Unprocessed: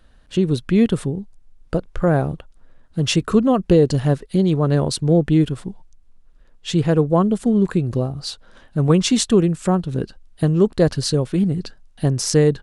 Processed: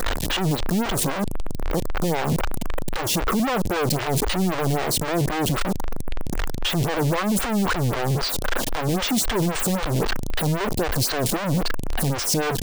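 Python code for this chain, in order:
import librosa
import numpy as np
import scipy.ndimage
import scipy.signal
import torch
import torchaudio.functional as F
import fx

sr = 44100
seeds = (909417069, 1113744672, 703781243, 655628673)

y = np.sign(x) * np.sqrt(np.mean(np.square(x)))
y = fx.stagger_phaser(y, sr, hz=3.8)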